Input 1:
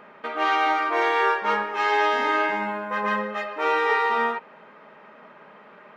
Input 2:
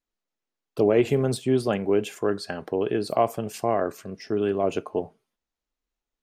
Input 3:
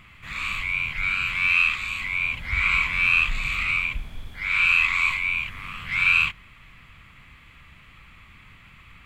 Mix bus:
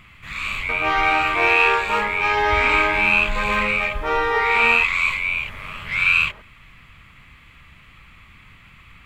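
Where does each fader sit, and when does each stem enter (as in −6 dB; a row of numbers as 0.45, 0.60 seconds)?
+1.5 dB, muted, +2.0 dB; 0.45 s, muted, 0.00 s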